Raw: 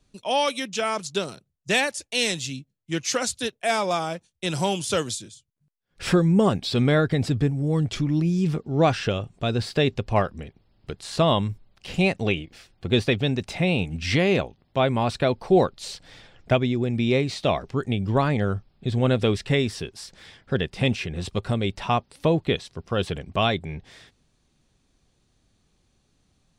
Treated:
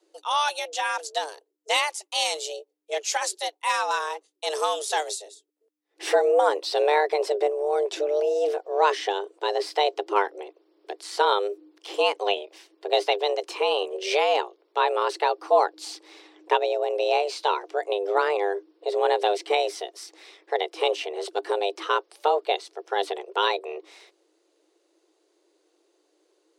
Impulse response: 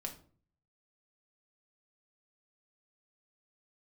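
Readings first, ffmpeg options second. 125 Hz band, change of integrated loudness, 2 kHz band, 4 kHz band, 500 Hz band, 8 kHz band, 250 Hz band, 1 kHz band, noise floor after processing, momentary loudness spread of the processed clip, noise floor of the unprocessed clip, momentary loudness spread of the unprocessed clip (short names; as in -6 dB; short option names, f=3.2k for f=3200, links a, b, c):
under -40 dB, -1.0 dB, -1.0 dB, 0.0 dB, +1.5 dB, -1.0 dB, -18.0 dB, +4.5 dB, -70 dBFS, 12 LU, -69 dBFS, 12 LU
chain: -af "tremolo=f=200:d=0.333,afreqshift=300"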